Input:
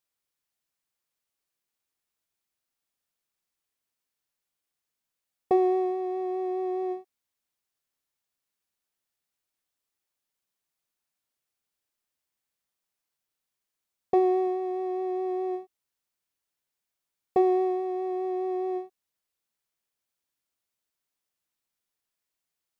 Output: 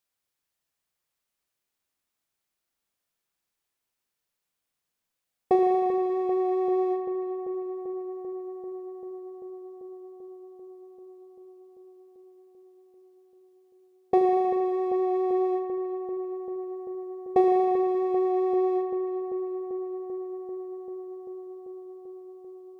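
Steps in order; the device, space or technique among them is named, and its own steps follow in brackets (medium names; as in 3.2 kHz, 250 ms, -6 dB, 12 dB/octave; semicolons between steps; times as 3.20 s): dub delay into a spring reverb (filtered feedback delay 391 ms, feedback 83%, low-pass 2.5 kHz, level -11 dB; spring tank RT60 2 s, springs 39 ms, chirp 60 ms, DRR 6.5 dB); trim +1.5 dB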